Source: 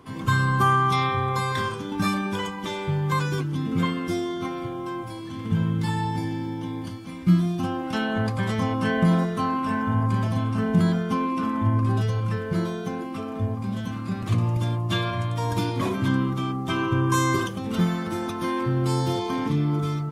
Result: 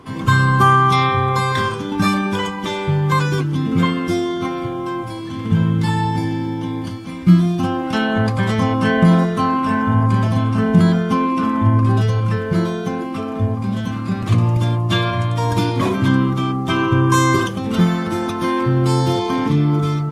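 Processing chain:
high-shelf EQ 11,000 Hz −6.5 dB
level +7.5 dB

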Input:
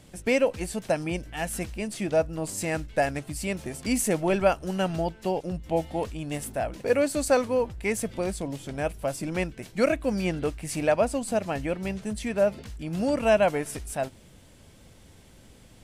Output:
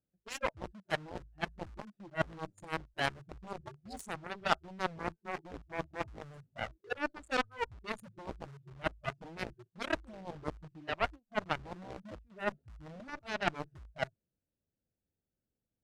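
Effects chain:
adaptive Wiener filter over 41 samples
spectral tilt +1.5 dB per octave
noise reduction from a noise print of the clip's start 29 dB
in parallel at −5 dB: bit reduction 7 bits
on the sum: low-pass filter 5,400 Hz 12 dB per octave
reversed playback
downward compressor 16 to 1, threshold −34 dBFS, peak gain reduction 21.5 dB
reversed playback
parametric band 1,200 Hz +5.5 dB 1 octave
harmonic generator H 3 −13 dB, 7 −22 dB, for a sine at −20 dBFS
level +9.5 dB

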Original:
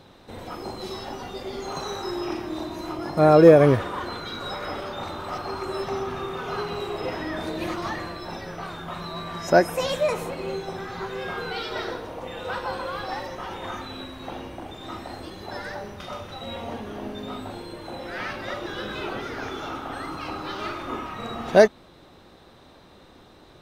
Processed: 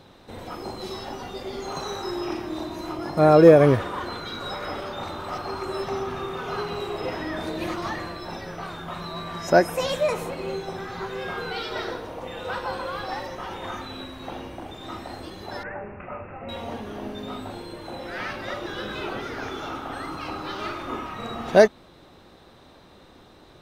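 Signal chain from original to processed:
0:15.63–0:16.49: Chebyshev low-pass filter 2,700 Hz, order 8

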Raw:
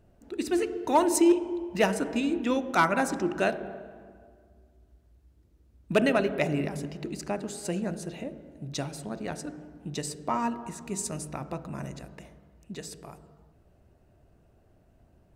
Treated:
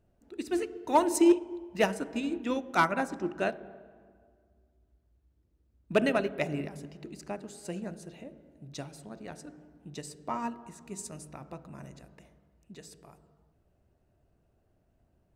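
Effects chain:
0:02.91–0:05.99: high-shelf EQ 4,500 Hz −5.5 dB
expander for the loud parts 1.5 to 1, over −34 dBFS

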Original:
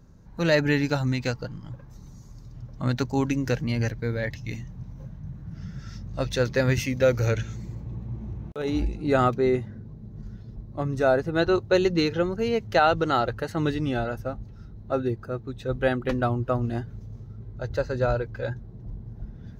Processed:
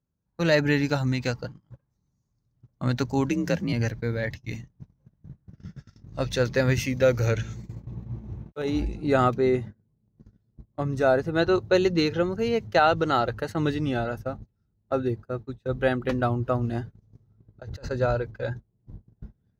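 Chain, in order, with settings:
noise gate −34 dBFS, range −28 dB
high-pass filter 52 Hz
0:03.29–0:03.73: frequency shifter +42 Hz
0:17.02–0:17.91: compressor whose output falls as the input rises −39 dBFS, ratio −1

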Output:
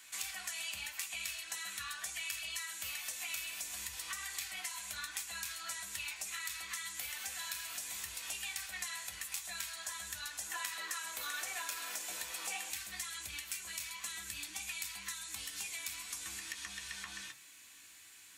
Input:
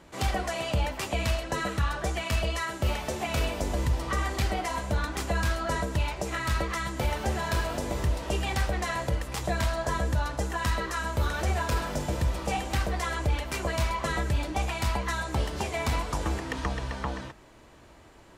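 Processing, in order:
first-order pre-emphasis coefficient 0.97
downward compressor 5 to 1, threshold −50 dBFS, peak gain reduction 14 dB
parametric band 370 Hz −14 dB 2.6 octaves, from 0:10.46 110 Hz, from 0:12.70 580 Hz
convolution reverb RT60 0.20 s, pre-delay 3 ms, DRR 2.5 dB
level +10.5 dB

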